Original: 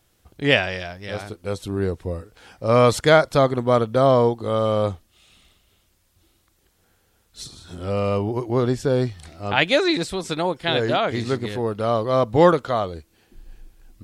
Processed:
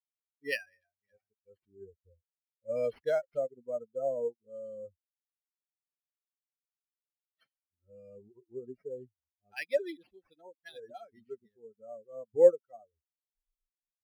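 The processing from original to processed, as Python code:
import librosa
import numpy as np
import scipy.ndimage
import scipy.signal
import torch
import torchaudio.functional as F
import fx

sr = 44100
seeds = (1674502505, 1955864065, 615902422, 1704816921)

y = fx.bin_expand(x, sr, power=3.0)
y = fx.vowel_filter(y, sr, vowel='e')
y = np.interp(np.arange(len(y)), np.arange(len(y))[::6], y[::6])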